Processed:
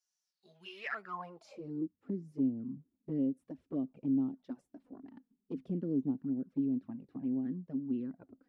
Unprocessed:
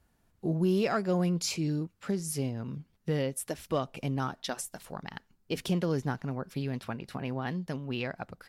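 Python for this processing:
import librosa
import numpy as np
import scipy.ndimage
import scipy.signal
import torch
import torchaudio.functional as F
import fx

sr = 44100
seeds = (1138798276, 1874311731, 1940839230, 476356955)

y = fx.filter_sweep_bandpass(x, sr, from_hz=5800.0, to_hz=270.0, start_s=0.24, end_s=1.95, q=5.8)
y = fx.env_flanger(y, sr, rest_ms=5.4, full_db=-36.0)
y = y * 10.0 ** (7.0 / 20.0)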